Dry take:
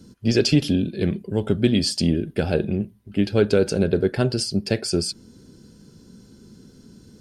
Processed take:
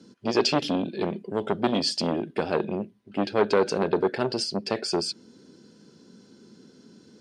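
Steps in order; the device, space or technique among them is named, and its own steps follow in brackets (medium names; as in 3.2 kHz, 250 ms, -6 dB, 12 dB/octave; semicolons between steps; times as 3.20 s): public-address speaker with an overloaded transformer (transformer saturation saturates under 760 Hz; band-pass 250–5700 Hz)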